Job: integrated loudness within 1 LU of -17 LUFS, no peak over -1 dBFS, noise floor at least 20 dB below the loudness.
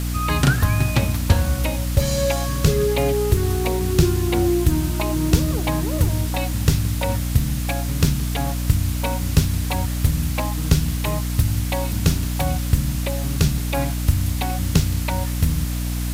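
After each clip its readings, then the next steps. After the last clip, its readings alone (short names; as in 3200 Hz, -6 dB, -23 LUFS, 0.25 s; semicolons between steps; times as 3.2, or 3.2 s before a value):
hum 60 Hz; harmonics up to 300 Hz; hum level -21 dBFS; noise floor -24 dBFS; noise floor target -42 dBFS; loudness -21.5 LUFS; peak -3.5 dBFS; loudness target -17.0 LUFS
-> de-hum 60 Hz, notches 5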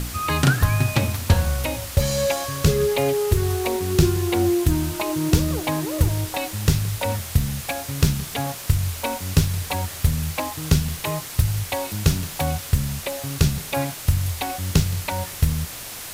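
hum none; noise floor -35 dBFS; noise floor target -43 dBFS
-> denoiser 8 dB, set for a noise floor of -35 dBFS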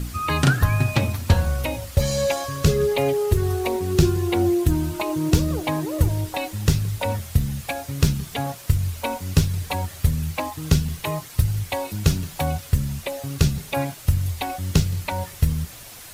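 noise floor -41 dBFS; noise floor target -44 dBFS
-> denoiser 6 dB, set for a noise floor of -41 dBFS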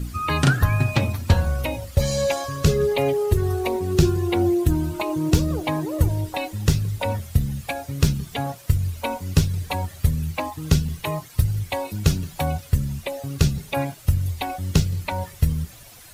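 noise floor -44 dBFS; loudness -23.5 LUFS; peak -5.0 dBFS; loudness target -17.0 LUFS
-> gain +6.5 dB; limiter -1 dBFS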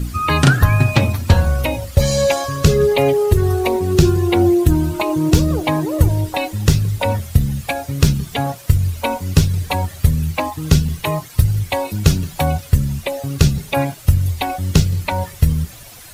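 loudness -17.5 LUFS; peak -1.0 dBFS; noise floor -38 dBFS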